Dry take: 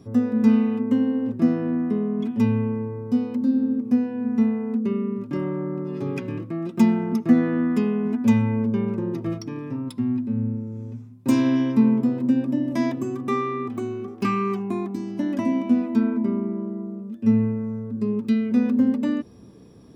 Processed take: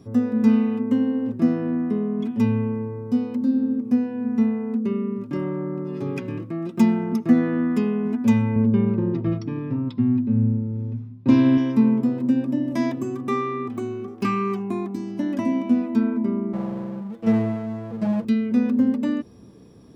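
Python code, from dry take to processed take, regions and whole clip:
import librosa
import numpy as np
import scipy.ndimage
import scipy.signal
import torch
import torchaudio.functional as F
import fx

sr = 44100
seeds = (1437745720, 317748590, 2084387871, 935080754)

y = fx.chain(x, sr, fx.lowpass(hz=4500.0, slope=24),
    fx.low_shelf(hz=220.0, db=8.5), at=(8.56, 11.58))
y = fx.chain(y, sr, fx.lower_of_two(delay_ms=0.94),
    fx.highpass(hz=89.0, slope=12),
    fx.comb(ms=6.0, depth=0.91), at=(16.53, 18.25))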